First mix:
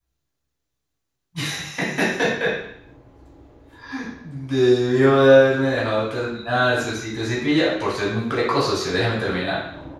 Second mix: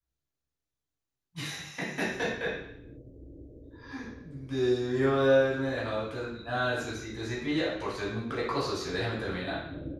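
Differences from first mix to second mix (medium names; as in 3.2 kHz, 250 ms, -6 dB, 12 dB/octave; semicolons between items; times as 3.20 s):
speech -10.5 dB; background: add steep low-pass 560 Hz 48 dB/octave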